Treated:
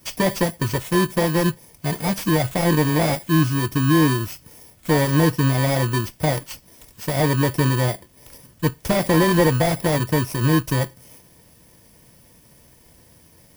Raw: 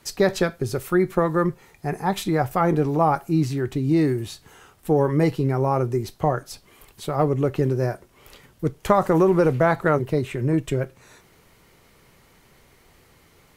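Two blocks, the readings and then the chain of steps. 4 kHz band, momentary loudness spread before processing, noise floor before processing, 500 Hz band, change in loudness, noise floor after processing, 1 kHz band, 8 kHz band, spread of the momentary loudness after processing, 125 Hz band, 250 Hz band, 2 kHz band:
+9.5 dB, 11 LU, −56 dBFS, −1.0 dB, +2.0 dB, −53 dBFS, −1.0 dB, +9.5 dB, 10 LU, +4.0 dB, +2.5 dB, +5.5 dB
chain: samples in bit-reversed order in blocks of 32 samples
in parallel at −2 dB: brickwall limiter −13.5 dBFS, peak gain reduction 10 dB
on the sum: notch comb filter 400 Hz
slew-rate limiting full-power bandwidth 350 Hz

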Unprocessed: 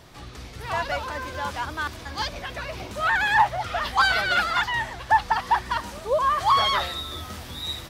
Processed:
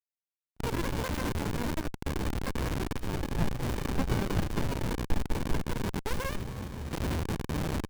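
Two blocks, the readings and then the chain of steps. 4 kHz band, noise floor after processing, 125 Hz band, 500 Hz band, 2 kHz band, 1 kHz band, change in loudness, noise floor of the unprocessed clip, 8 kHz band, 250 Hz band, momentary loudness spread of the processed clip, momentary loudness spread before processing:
−14.0 dB, below −85 dBFS, +5.5 dB, −5.5 dB, −16.0 dB, −17.0 dB, −9.5 dB, −41 dBFS, −2.5 dB, +8.5 dB, 5 LU, 14 LU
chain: bit reduction 5 bits
gain on a spectral selection 0:06.36–0:06.93, 280–5,400 Hz −13 dB
notch filter 740 Hz, Q 12
dynamic equaliser 1,100 Hz, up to −3 dB, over −34 dBFS, Q 3.7
windowed peak hold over 65 samples

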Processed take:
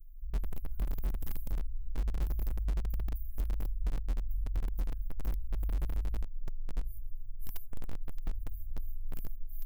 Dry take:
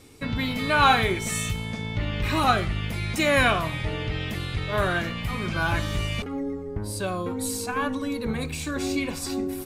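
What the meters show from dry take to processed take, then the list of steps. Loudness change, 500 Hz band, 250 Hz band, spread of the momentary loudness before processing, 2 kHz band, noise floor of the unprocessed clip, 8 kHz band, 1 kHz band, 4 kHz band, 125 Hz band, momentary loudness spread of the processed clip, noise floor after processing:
−14.0 dB, −25.5 dB, −22.5 dB, 10 LU, −32.5 dB, −34 dBFS, −25.0 dB, −30.5 dB, −30.0 dB, −10.0 dB, 11 LU, −42 dBFS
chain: inverse Chebyshev band-stop filter 190–7,000 Hz, stop band 80 dB
tape delay 100 ms, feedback 41%, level −22 dB, low-pass 2,700 Hz
in parallel at −11 dB: wrap-around overflow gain 44.5 dB
on the sum: brickwall limiter −42 dBFS, peak gain reduction 10 dB
level +17.5 dB

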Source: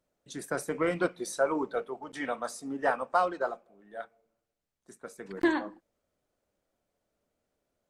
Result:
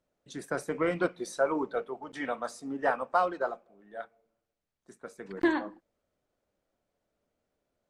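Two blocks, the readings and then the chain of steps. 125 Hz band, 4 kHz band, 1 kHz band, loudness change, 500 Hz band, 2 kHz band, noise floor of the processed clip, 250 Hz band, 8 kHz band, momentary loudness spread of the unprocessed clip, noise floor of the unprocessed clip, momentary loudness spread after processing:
0.0 dB, −1.5 dB, 0.0 dB, 0.0 dB, 0.0 dB, −0.5 dB, −85 dBFS, 0.0 dB, −5.0 dB, 17 LU, −84 dBFS, 17 LU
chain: high-shelf EQ 8,300 Hz −11 dB

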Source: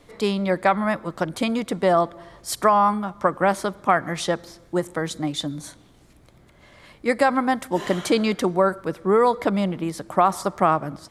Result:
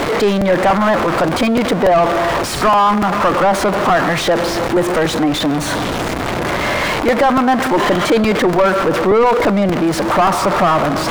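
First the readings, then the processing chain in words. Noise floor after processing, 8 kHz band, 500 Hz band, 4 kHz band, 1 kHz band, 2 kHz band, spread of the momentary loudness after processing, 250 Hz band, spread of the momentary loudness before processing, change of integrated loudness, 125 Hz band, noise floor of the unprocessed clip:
−20 dBFS, +8.5 dB, +8.5 dB, +11.0 dB, +8.0 dB, +10.5 dB, 5 LU, +9.0 dB, 10 LU, +8.0 dB, +9.0 dB, −53 dBFS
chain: converter with a step at zero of −19 dBFS
mid-hump overdrive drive 24 dB, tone 1,200 Hz, clips at −3.5 dBFS
regular buffer underruns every 0.29 s, samples 128, repeat, from 0:00.41

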